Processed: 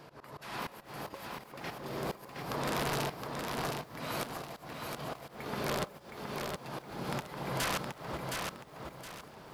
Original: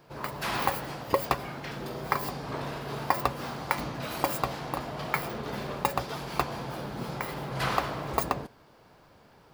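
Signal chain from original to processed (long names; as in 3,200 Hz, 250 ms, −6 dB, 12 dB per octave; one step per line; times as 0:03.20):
low-shelf EQ 64 Hz −8 dB
delay that swaps between a low-pass and a high-pass 132 ms, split 1,700 Hz, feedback 63%, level −5 dB
downward compressor 6 to 1, threshold −34 dBFS, peak gain reduction 14.5 dB
volume swells 445 ms
on a send at −18 dB: convolution reverb RT60 0.45 s, pre-delay 5 ms
on the sum: wrap-around overflow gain 30 dB
downsampling to 32,000 Hz
feedback echo at a low word length 717 ms, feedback 35%, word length 11 bits, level −4 dB
level +5 dB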